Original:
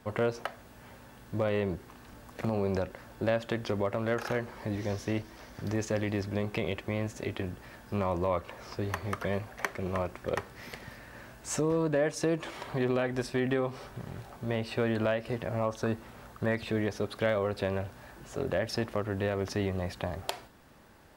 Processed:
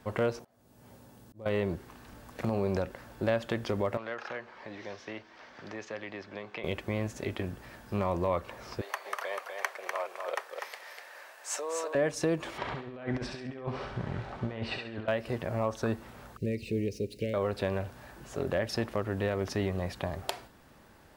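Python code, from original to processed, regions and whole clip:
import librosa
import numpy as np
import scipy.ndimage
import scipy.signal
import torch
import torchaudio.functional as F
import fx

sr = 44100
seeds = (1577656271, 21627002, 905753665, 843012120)

y = fx.chain(x, sr, fx.highpass(hz=79.0, slope=12),
    fx.peak_eq(hz=1900.0, db=-10.5, octaves=2.2),
    fx.auto_swell(attack_ms=478.0), at=(0.39, 1.46))
y = fx.chain(y, sr, fx.highpass(hz=1100.0, slope=6),
    fx.air_absorb(metres=180.0),
    fx.band_squash(depth_pct=40), at=(3.97, 6.64))
y = fx.chain(y, sr, fx.highpass(hz=550.0, slope=24),
    fx.echo_single(ms=247, db=-5.0), at=(8.81, 11.95))
y = fx.chain(y, sr, fx.lowpass(hz=3500.0, slope=12),
    fx.over_compress(threshold_db=-35.0, ratio=-0.5),
    fx.echo_thinned(ms=68, feedback_pct=37, hz=920.0, wet_db=-3.5), at=(12.58, 15.08))
y = fx.chain(y, sr, fx.median_filter(points=3),
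    fx.cheby1_bandstop(low_hz=470.0, high_hz=2500.0, order=3),
    fx.peak_eq(hz=3400.0, db=-14.0, octaves=0.23), at=(16.37, 17.34))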